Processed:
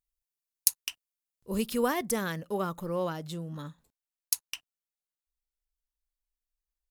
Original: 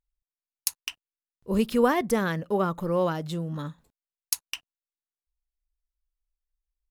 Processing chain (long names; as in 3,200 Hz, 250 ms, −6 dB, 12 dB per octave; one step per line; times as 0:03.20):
high-shelf EQ 4,200 Hz +12 dB, from 0:02.80 +6.5 dB
level −6.5 dB